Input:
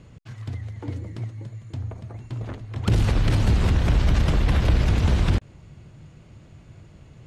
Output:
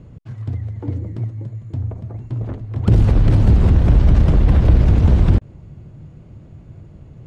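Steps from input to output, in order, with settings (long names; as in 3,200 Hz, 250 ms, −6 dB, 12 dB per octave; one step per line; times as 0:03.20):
tilt shelving filter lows +7.5 dB, about 1,100 Hz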